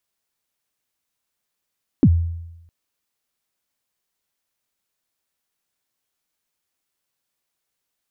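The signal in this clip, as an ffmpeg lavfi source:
-f lavfi -i "aevalsrc='0.447*pow(10,-3*t/0.94)*sin(2*PI*(330*0.057/log(84/330)*(exp(log(84/330)*min(t,0.057)/0.057)-1)+84*max(t-0.057,0)))':d=0.66:s=44100"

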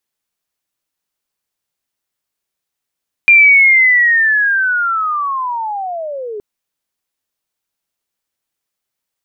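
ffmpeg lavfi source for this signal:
-f lavfi -i "aevalsrc='pow(10,(-3-19*t/3.12)/20)*sin(2*PI*(2400*t-2000*t*t/(2*3.12)))':d=3.12:s=44100"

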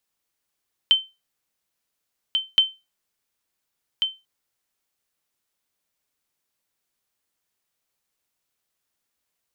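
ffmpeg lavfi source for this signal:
-f lavfi -i "aevalsrc='0.398*(sin(2*PI*3090*mod(t,1.67))*exp(-6.91*mod(t,1.67)/0.24)+0.473*sin(2*PI*3090*max(mod(t,1.67)-1.44,0))*exp(-6.91*max(mod(t,1.67)-1.44,0)/0.24))':d=3.34:s=44100"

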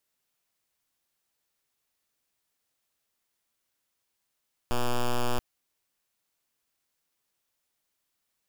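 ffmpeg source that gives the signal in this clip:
-f lavfi -i "aevalsrc='0.0596*(2*lt(mod(122*t,1),0.06)-1)':d=0.68:s=44100"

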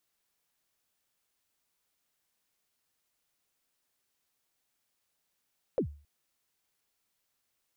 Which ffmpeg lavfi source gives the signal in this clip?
-f lavfi -i "aevalsrc='0.0794*pow(10,-3*t/0.39)*sin(2*PI*(590*0.091/log(73/590)*(exp(log(73/590)*min(t,0.091)/0.091)-1)+73*max(t-0.091,0)))':d=0.27:s=44100"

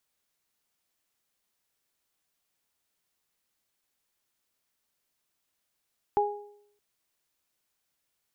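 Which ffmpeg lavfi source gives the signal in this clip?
-f lavfi -i "aevalsrc='0.0668*pow(10,-3*t/0.74)*sin(2*PI*412*t)+0.1*pow(10,-3*t/0.51)*sin(2*PI*824*t)':d=0.62:s=44100"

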